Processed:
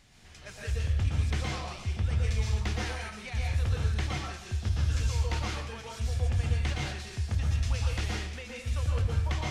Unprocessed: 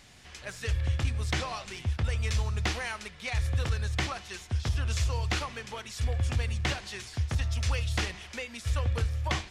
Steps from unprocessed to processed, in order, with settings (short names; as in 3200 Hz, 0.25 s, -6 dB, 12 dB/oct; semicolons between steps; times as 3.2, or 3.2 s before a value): low shelf 190 Hz +6 dB; plate-style reverb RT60 0.63 s, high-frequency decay 0.95×, pre-delay 0.105 s, DRR -2.5 dB; gain -7.5 dB